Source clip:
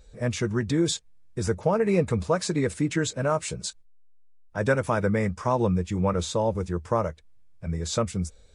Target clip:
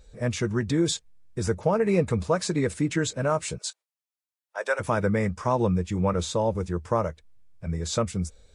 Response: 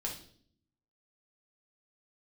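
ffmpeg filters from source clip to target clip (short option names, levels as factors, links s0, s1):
-filter_complex "[0:a]asplit=3[s0][s1][s2];[s0]afade=t=out:st=3.57:d=0.02[s3];[s1]highpass=f=540:w=0.5412,highpass=f=540:w=1.3066,afade=t=in:st=3.57:d=0.02,afade=t=out:st=4.79:d=0.02[s4];[s2]afade=t=in:st=4.79:d=0.02[s5];[s3][s4][s5]amix=inputs=3:normalize=0"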